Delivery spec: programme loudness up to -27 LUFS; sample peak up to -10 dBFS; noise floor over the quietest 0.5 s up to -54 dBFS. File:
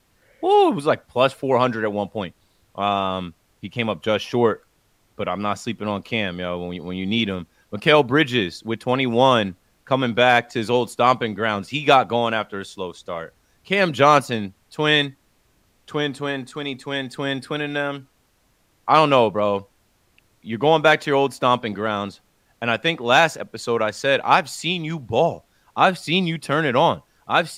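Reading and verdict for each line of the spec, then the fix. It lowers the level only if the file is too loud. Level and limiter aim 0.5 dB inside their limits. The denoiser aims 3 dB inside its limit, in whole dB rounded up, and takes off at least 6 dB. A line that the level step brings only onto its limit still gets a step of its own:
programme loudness -20.5 LUFS: fail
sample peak -2.0 dBFS: fail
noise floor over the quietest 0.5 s -63 dBFS: OK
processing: gain -7 dB; limiter -10.5 dBFS

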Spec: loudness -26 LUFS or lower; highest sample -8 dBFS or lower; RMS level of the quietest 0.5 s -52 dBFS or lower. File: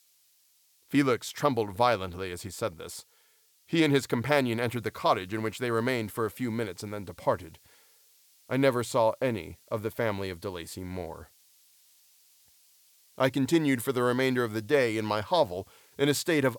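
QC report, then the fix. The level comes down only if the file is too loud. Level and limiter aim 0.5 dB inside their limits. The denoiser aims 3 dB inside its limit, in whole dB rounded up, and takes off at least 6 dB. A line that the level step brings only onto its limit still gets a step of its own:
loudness -29.0 LUFS: OK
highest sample -9.5 dBFS: OK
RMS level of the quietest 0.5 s -65 dBFS: OK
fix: none

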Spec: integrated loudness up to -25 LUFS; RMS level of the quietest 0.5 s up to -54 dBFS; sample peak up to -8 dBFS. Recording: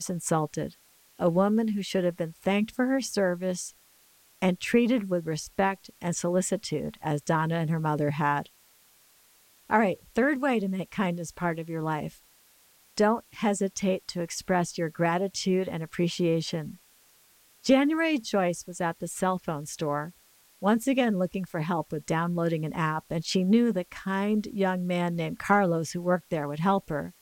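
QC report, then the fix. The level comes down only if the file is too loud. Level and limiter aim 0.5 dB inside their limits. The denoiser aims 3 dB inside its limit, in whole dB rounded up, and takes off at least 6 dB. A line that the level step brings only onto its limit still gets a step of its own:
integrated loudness -28.0 LUFS: OK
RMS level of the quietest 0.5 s -60 dBFS: OK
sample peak -9.5 dBFS: OK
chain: none

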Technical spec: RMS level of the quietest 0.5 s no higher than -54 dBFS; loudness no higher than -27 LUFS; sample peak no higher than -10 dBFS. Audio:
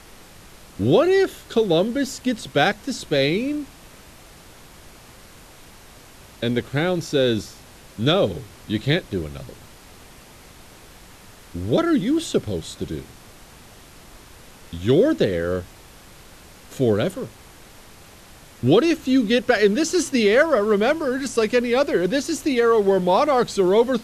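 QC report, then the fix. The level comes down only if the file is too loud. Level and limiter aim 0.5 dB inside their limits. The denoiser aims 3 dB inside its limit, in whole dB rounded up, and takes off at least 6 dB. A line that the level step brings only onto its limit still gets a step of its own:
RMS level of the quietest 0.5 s -46 dBFS: fail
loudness -20.5 LUFS: fail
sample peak -5.0 dBFS: fail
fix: denoiser 6 dB, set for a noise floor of -46 dBFS; gain -7 dB

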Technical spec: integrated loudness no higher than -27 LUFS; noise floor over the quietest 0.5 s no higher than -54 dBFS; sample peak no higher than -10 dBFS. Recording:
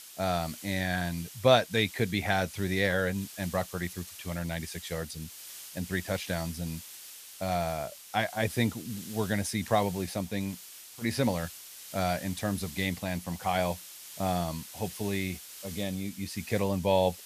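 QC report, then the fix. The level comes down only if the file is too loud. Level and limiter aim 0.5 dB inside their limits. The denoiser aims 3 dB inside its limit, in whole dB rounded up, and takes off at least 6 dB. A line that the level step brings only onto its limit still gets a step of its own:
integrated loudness -31.5 LUFS: OK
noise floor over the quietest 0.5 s -47 dBFS: fail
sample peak -8.5 dBFS: fail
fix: denoiser 10 dB, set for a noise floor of -47 dBFS; limiter -10.5 dBFS

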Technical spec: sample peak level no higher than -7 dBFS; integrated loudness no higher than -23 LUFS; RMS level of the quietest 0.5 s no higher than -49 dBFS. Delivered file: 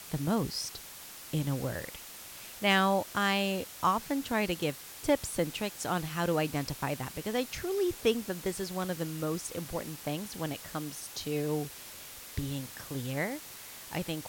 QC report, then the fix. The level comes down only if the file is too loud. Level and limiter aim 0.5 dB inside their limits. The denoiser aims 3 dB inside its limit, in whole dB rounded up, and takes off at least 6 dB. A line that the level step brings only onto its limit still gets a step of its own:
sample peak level -15.0 dBFS: OK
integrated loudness -32.5 LUFS: OK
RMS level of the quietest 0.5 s -47 dBFS: fail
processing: denoiser 6 dB, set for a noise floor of -47 dBFS

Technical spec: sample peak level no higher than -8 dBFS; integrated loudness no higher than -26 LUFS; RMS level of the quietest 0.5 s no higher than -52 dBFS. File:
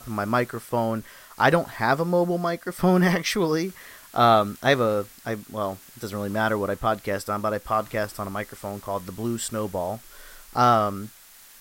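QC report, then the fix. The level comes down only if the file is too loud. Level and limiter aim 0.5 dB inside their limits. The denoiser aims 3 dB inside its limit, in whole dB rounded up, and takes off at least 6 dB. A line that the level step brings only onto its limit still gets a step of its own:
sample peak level -4.5 dBFS: fail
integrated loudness -24.5 LUFS: fail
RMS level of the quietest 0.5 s -50 dBFS: fail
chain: denoiser 6 dB, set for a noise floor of -50 dBFS; gain -2 dB; limiter -8.5 dBFS

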